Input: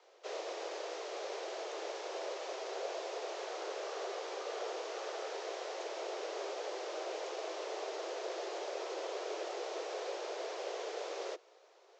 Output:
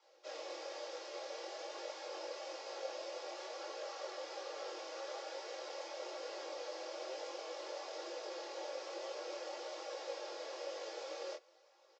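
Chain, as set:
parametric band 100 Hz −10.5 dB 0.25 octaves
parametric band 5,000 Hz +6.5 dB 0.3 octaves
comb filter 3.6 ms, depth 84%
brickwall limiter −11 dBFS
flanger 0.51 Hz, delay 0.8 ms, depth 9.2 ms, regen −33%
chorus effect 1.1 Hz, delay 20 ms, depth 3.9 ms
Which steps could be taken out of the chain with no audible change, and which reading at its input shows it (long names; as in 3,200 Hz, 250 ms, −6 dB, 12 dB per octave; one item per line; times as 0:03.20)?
parametric band 100 Hz: nothing at its input below 290 Hz
brickwall limiter −11 dBFS: peak of its input −24.5 dBFS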